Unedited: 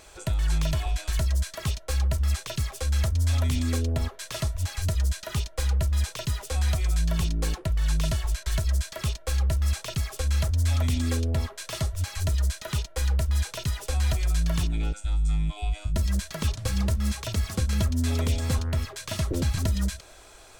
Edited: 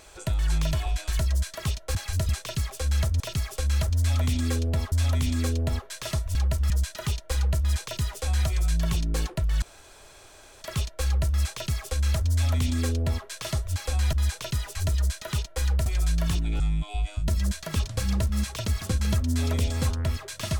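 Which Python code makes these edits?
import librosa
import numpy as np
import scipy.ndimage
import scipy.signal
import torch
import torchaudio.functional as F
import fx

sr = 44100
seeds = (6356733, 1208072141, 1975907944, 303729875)

y = fx.edit(x, sr, fx.swap(start_s=1.95, length_s=0.35, other_s=4.64, other_length_s=0.34),
    fx.room_tone_fill(start_s=7.9, length_s=1.0),
    fx.duplicate(start_s=9.81, length_s=1.72, to_s=3.21),
    fx.swap(start_s=12.15, length_s=1.11, other_s=13.88, other_length_s=0.26),
    fx.cut(start_s=14.88, length_s=0.4), tone=tone)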